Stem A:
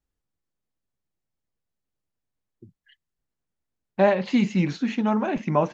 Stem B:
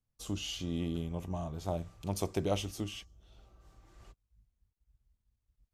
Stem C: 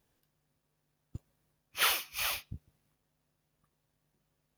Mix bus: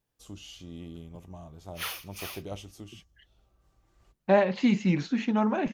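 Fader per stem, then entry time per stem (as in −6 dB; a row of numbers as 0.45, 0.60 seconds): −2.5, −7.5, −7.0 decibels; 0.30, 0.00, 0.00 seconds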